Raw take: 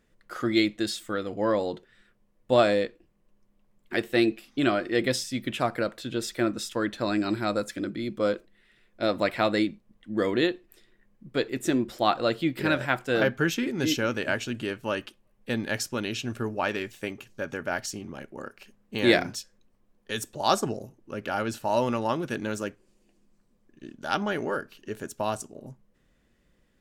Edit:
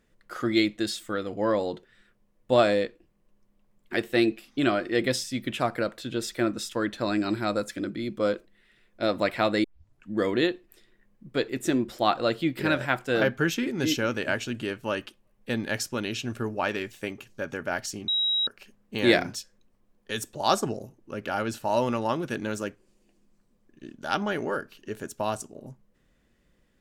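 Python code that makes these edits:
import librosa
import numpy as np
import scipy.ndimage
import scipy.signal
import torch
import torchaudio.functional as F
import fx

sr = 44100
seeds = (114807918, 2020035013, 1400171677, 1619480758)

y = fx.edit(x, sr, fx.tape_start(start_s=9.64, length_s=0.48),
    fx.bleep(start_s=18.08, length_s=0.39, hz=3840.0, db=-22.0), tone=tone)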